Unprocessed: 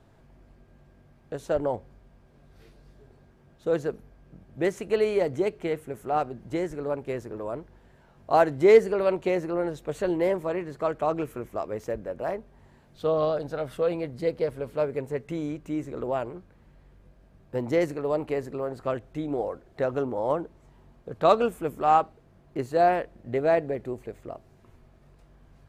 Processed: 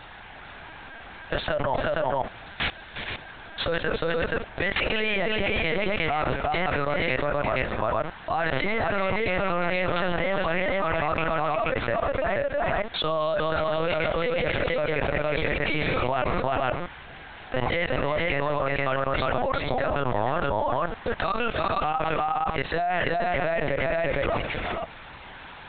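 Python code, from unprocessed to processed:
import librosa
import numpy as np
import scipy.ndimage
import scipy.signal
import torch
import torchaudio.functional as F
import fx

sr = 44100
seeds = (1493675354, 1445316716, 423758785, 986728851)

y = scipy.signal.sosfilt(scipy.signal.butter(2, 920.0, 'highpass', fs=sr, output='sos'), x)
y = fx.high_shelf(y, sr, hz=2300.0, db=7.5)
y = fx.level_steps(y, sr, step_db=20)
y = fx.echo_multitap(y, sr, ms=(357, 469), db=(-8.5, -7.0))
y = fx.lpc_vocoder(y, sr, seeds[0], excitation='pitch_kept', order=10)
y = fx.env_flatten(y, sr, amount_pct=100)
y = y * librosa.db_to_amplitude(-3.5)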